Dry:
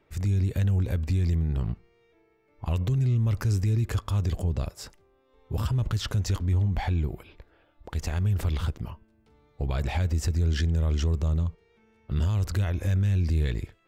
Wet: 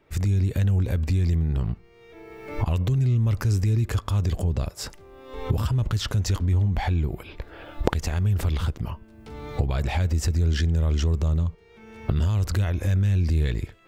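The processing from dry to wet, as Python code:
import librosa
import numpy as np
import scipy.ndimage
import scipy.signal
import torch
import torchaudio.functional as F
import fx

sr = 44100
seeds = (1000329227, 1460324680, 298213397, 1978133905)

y = fx.recorder_agc(x, sr, target_db=-21.0, rise_db_per_s=34.0, max_gain_db=30)
y = F.gain(torch.from_numpy(y), 2.5).numpy()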